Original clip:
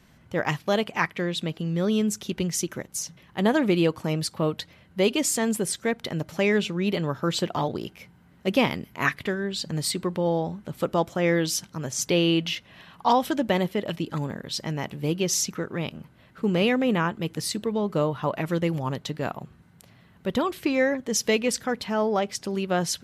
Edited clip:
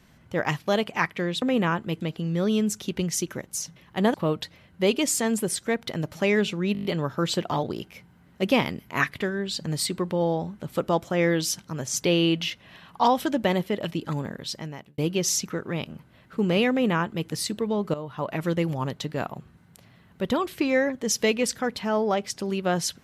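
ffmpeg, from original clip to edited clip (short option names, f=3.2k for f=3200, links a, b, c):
-filter_complex "[0:a]asplit=12[a][b][c][d][e][f][g][h][i][j][k][l];[a]atrim=end=1.422[m];[b]atrim=start=16.748:end=17.342[n];[c]atrim=start=1.418:end=3.552[o];[d]atrim=start=4.308:end=6.922[p];[e]atrim=start=6.898:end=6.922[q];[f]atrim=start=6.898:end=6.922[r];[g]atrim=start=6.898:end=6.922[s];[h]atrim=start=6.898:end=6.922[t];[i]atrim=start=6.898:end=6.922[u];[j]atrim=start=6.898:end=15.03,asetpts=PTS-STARTPTS,afade=t=out:st=7.512:d=0.62[v];[k]atrim=start=15.03:end=17.99,asetpts=PTS-STARTPTS,afade=t=in:d=0.004:c=hsin,afade=t=out:st=2.956:d=0.004:c=hsin:silence=0.188365[w];[l]atrim=start=17.99,asetpts=PTS-STARTPTS,afade=t=in:d=0.48:silence=0.188365[x];[m][n]acrossfade=d=0.004:c1=hsin:c2=hsin[y];[y][o]acrossfade=d=0.004:c1=hsin:c2=hsin[z];[z][p]acrossfade=d=0.004:c1=hsin:c2=hsin[aa];[aa][q]acrossfade=d=0.004:c1=hsin:c2=hsin[ab];[ab][r]acrossfade=d=0.004:c1=hsin:c2=hsin[ac];[ac][s]acrossfade=d=0.004:c1=hsin:c2=hsin[ad];[ad][t]acrossfade=d=0.004:c1=hsin:c2=hsin[ae];[ae][u]acrossfade=d=0.004:c1=hsin:c2=hsin[af];[v][w][x]concat=n=3:v=0:a=1[ag];[af][ag]acrossfade=d=0.004:c1=hsin:c2=hsin"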